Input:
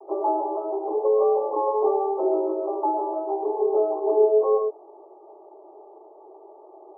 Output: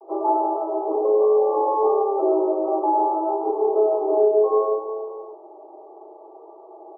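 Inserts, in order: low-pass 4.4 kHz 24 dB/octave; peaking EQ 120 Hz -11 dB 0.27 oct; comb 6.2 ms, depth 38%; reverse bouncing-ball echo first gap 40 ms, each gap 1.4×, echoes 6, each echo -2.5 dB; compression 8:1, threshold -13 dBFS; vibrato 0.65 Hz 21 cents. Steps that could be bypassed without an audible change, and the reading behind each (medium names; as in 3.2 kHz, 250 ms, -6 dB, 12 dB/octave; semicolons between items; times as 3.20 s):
low-pass 4.4 kHz: input has nothing above 1.2 kHz; peaking EQ 120 Hz: input has nothing below 300 Hz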